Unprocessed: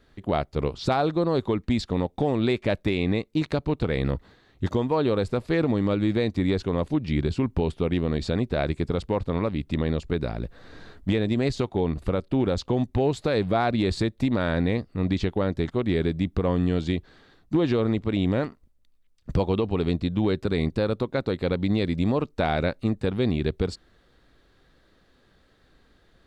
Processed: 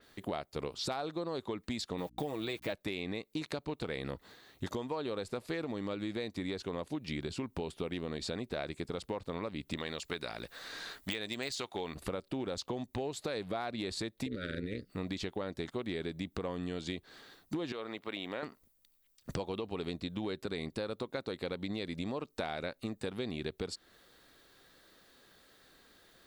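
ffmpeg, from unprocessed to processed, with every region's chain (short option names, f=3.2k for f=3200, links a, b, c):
-filter_complex "[0:a]asettb=1/sr,asplit=3[a][b][c];[a]atrim=end=1.984[d];[b]atrim=start=1.98:end=2.73,asetpts=PTS-STARTPTS,afade=t=in:d=0.004:c=qsin,afade=t=out:st=0.746:d=0.004:c=qsin,aeval=exprs='val(0)*gte(abs(val(0)),0.00376)':c=same,aecho=1:1:6.3:0.47,atrim=end_sample=33075,aeval=exprs='val(0)+0.00631*(sin(2*PI*60*n/s)+sin(2*PI*2*60*n/s)/2+sin(2*PI*3*60*n/s)/3+sin(2*PI*4*60*n/s)/4+sin(2*PI*5*60*n/s)/5)':c=same[e];[c]atrim=start=2.726[f];[d][e]acrossfade=d=0.004:c1=hsin:c2=qsin[g];[g][f]acrossfade=d=0.004:c1=qsin:c2=hsin,asettb=1/sr,asplit=3[h][i][j];[h]atrim=end=9.774[k];[i]atrim=start=9.77:end=11.95,asetpts=PTS-STARTPTS,afade=t=in:d=0.004:c=qsin,afade=t=out:st=2.176:d=0.004:c=qsin,deesser=0.85,tiltshelf=f=740:g=-6.5[l];[j]atrim=start=11.946[m];[k][l]acrossfade=d=0.004:c1=hsin:c2=qsin[n];[n][m]acrossfade=d=0.004:c1=qsin:c2=hsin,asettb=1/sr,asplit=3[o][p][q];[o]atrim=end=14.264[r];[p]atrim=start=14.26:end=14.9,asetpts=PTS-STARTPTS,afade=t=in:d=0.004:c=qsin,afade=t=out:st=0.636:d=0.004:c=qsin,lowshelf=f=170:g=8.5,tremolo=f=190:d=0.788,asuperstop=centerf=870:order=8:qfactor=1.1[s];[q]atrim=start=14.896[t];[r][s]acrossfade=d=0.004:c1=hsin:c2=qsin[u];[u][t]acrossfade=d=0.004:c1=qsin:c2=hsin,asettb=1/sr,asplit=3[v][w][x];[v]atrim=end=17.724[y];[w]atrim=start=17.72:end=18.43,asetpts=PTS-STARTPTS,afade=t=in:d=0.004:c=qsin,afade=t=out:st=0.706:d=0.004:c=qsin,highpass=f=1k:p=1,equalizer=f=7k:t=o:w=1.4:g=-10.5[z];[x]atrim=start=18.426[aa];[y][z]acrossfade=d=0.004:c1=hsin:c2=qsin[ab];[ab][aa]acrossfade=d=0.004:c1=qsin:c2=hsin,aemphasis=mode=production:type=bsi,acompressor=threshold=-35dB:ratio=5,adynamicequalizer=threshold=0.00224:dfrequency=5600:dqfactor=0.7:tfrequency=5600:tqfactor=0.7:attack=5:release=100:ratio=0.375:range=2:mode=cutabove:tftype=highshelf"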